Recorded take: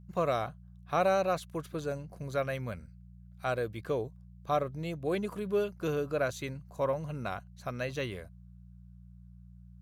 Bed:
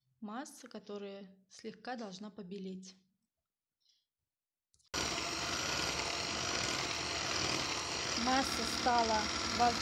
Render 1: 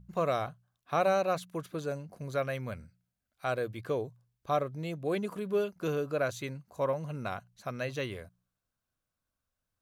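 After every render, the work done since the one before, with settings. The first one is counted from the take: de-hum 60 Hz, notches 3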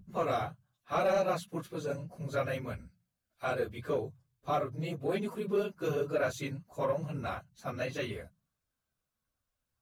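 phase randomisation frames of 50 ms; saturation -20 dBFS, distortion -21 dB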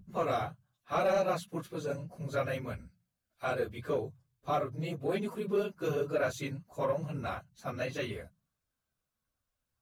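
no audible change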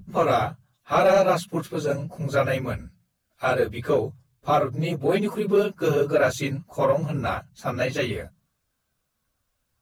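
trim +10.5 dB

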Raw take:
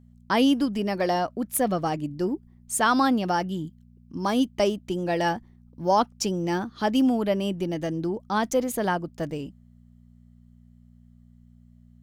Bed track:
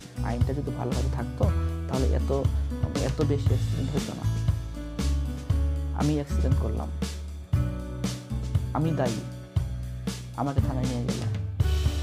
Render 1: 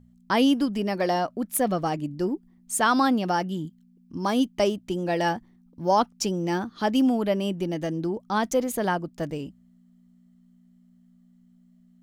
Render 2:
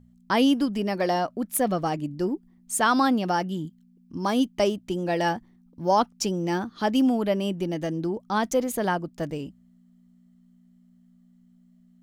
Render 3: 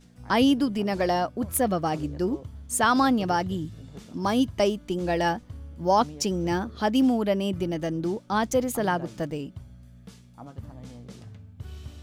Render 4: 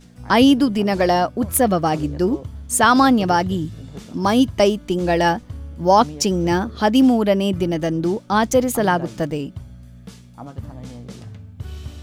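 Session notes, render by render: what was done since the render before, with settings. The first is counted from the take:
de-hum 60 Hz, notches 2
no audible change
add bed track -15.5 dB
trim +7.5 dB

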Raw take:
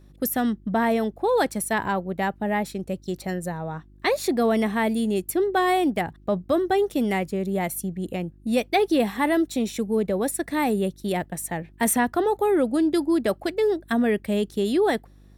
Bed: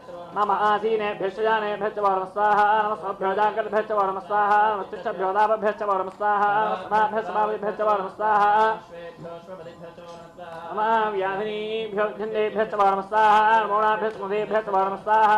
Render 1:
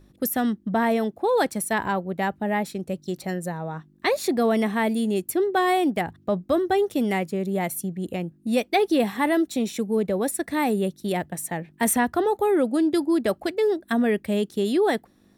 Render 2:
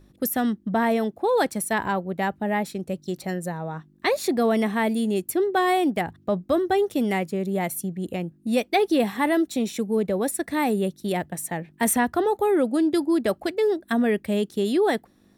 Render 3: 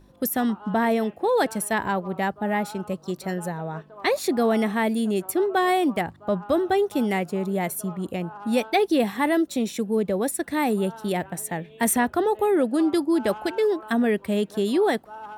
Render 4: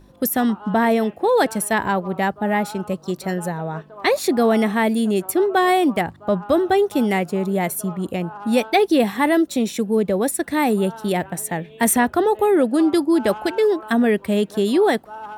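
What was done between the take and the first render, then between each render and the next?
de-hum 50 Hz, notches 3
no audible change
add bed -21.5 dB
trim +4.5 dB

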